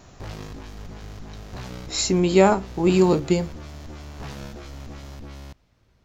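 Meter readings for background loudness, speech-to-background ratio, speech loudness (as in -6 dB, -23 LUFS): -39.5 LUFS, 19.5 dB, -20.0 LUFS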